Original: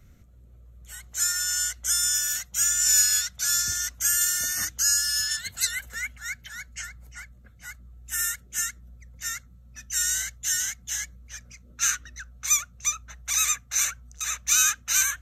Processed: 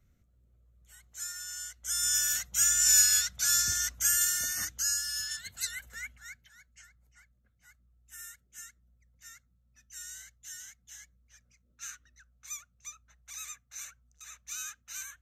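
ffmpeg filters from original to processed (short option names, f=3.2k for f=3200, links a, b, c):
-af "volume=-2dB,afade=t=in:st=1.8:d=0.4:silence=0.251189,afade=t=out:st=3.85:d=1.18:silence=0.446684,afade=t=out:st=6.05:d=0.47:silence=0.316228"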